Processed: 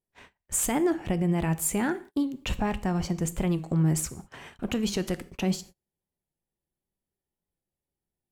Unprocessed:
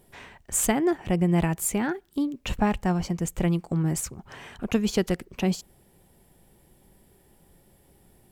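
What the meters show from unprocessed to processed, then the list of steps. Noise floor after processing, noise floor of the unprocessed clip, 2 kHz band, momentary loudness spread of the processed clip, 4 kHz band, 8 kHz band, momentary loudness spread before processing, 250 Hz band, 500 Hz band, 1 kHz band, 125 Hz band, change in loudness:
below −85 dBFS, −61 dBFS, −2.5 dB, 8 LU, −0.5 dB, −1.0 dB, 10 LU, −2.0 dB, −3.0 dB, −3.0 dB, −1.0 dB, −2.0 dB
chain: brickwall limiter −16.5 dBFS, peak gain reduction 8 dB
dense smooth reverb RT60 0.57 s, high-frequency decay 0.95×, DRR 13 dB
noise gate −43 dBFS, range −32 dB
wow of a warped record 45 rpm, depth 100 cents

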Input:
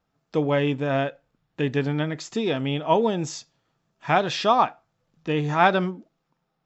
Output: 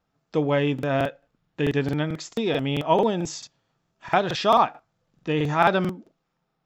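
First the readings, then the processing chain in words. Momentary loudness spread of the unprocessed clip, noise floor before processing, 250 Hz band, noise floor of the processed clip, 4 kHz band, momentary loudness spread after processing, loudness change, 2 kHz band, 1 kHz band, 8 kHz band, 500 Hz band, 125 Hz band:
11 LU, −76 dBFS, 0.0 dB, −76 dBFS, 0.0 dB, 10 LU, 0.0 dB, −1.0 dB, 0.0 dB, can't be measured, +0.5 dB, 0.0 dB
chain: regular buffer underruns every 0.22 s, samples 2,048, repeat, from 0:00.74

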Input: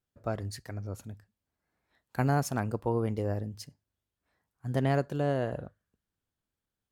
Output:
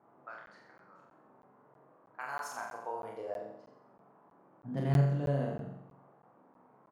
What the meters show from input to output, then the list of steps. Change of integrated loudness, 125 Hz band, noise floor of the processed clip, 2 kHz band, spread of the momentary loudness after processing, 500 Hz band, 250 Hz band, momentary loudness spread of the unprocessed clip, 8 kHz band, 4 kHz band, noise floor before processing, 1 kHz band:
−3.0 dB, −2.0 dB, −64 dBFS, −4.5 dB, 22 LU, −7.0 dB, −5.5 dB, 17 LU, −9.0 dB, −9.0 dB, below −85 dBFS, −5.5 dB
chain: low-pass that shuts in the quiet parts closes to 620 Hz, open at −24 dBFS
low-shelf EQ 130 Hz +11 dB
high-pass filter sweep 1,300 Hz → 150 Hz, 0:02.08–0:05.09
flanger 0.76 Hz, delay 2.9 ms, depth 4.4 ms, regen −62%
noise in a band 130–1,100 Hz −59 dBFS
double-tracking delay 28 ms −5 dB
flutter between parallel walls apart 7.5 metres, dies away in 0.78 s
regular buffer underruns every 0.32 s, samples 512, zero, from 0:00.46
level −7.5 dB

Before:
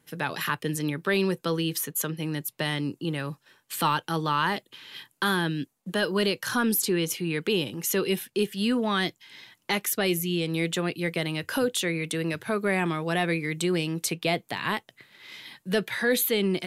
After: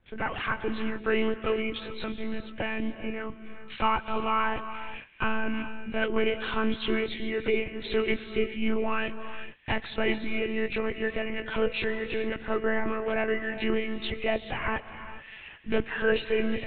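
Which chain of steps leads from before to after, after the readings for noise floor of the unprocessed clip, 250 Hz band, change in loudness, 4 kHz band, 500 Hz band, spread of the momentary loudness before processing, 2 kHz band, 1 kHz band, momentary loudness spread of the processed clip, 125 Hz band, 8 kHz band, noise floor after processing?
−72 dBFS, −3.5 dB, −2.5 dB, −6.0 dB, 0.0 dB, 9 LU, −1.5 dB, −1.5 dB, 9 LU, −10.0 dB, below −40 dB, −46 dBFS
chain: hearing-aid frequency compression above 1,400 Hz 1.5 to 1
one-pitch LPC vocoder at 8 kHz 220 Hz
reverb whose tail is shaped and stops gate 460 ms rising, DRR 10.5 dB

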